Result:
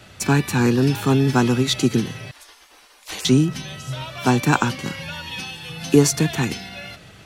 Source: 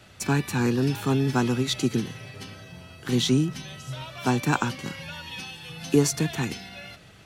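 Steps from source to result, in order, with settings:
0:02.31–0:03.25: gate on every frequency bin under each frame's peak −20 dB weak
level +6 dB

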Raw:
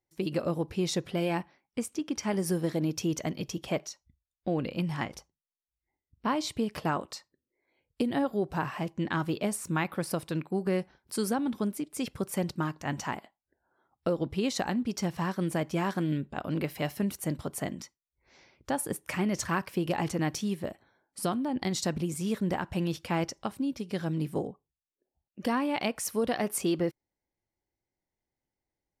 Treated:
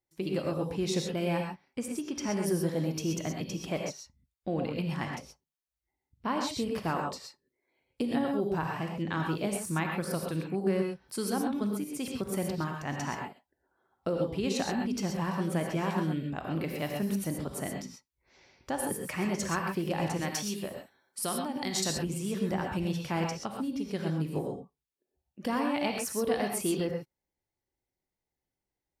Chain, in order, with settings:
0:20.17–0:21.90: spectral tilt +2 dB per octave
reverb whose tail is shaped and stops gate 150 ms rising, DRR 1.5 dB
level −3 dB

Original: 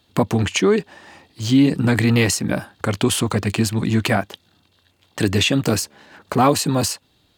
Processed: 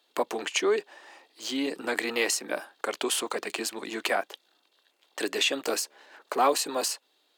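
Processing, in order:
high-pass filter 370 Hz 24 dB per octave
level −6 dB

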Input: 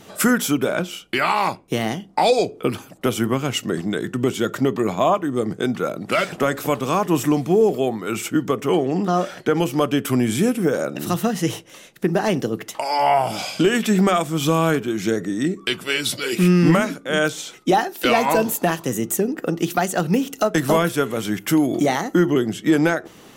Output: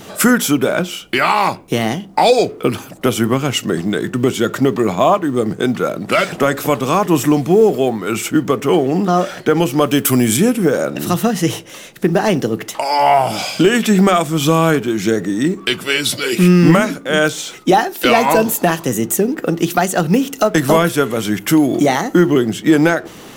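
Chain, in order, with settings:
mu-law and A-law mismatch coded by mu
0:09.86–0:10.37: high-shelf EQ 6,000 Hz +11.5 dB
level +5 dB

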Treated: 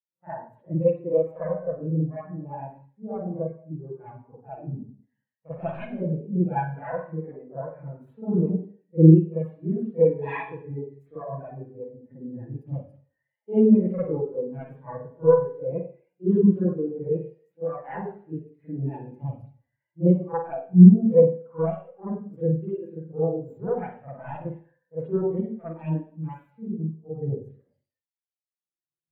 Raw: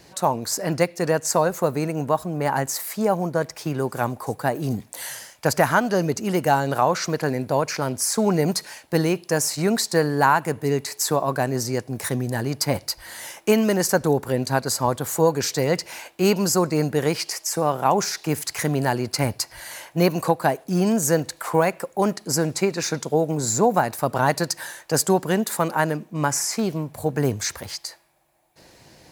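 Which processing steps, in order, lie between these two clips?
phase distortion by the signal itself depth 0.39 ms
spring reverb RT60 1.1 s, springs 44/50 ms, chirp 30 ms, DRR −9.5 dB
every bin expanded away from the loudest bin 2.5 to 1
level −5.5 dB

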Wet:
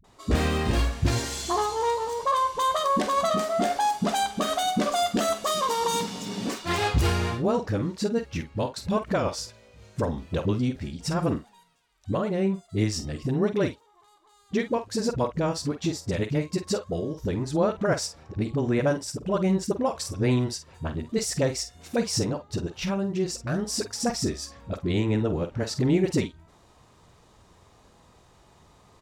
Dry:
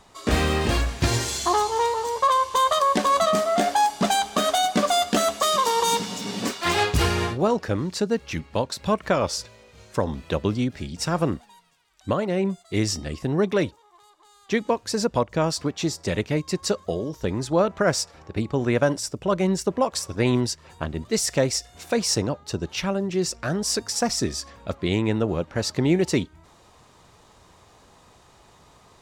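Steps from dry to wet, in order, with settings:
low-shelf EQ 420 Hz +5 dB
double-tracking delay 47 ms −10.5 dB
all-pass dispersion highs, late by 43 ms, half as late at 330 Hz
level −5.5 dB

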